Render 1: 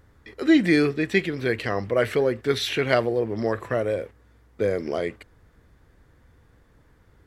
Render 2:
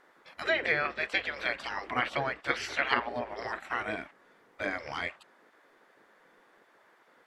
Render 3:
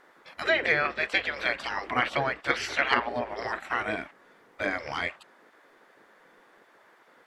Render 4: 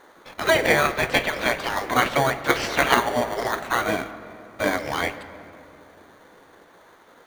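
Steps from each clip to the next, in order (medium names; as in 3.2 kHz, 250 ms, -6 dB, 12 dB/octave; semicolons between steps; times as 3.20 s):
spectral gate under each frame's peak -15 dB weak; low-pass that closes with the level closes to 580 Hz, closed at -21 dBFS; tone controls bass -9 dB, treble -8 dB; trim +4.5 dB
saturation -10.5 dBFS, distortion -29 dB; trim +4 dB
in parallel at -3 dB: sample-and-hold 17×; on the sum: reverberation RT60 2.9 s, pre-delay 6 ms, DRR 12 dB; trim +3.5 dB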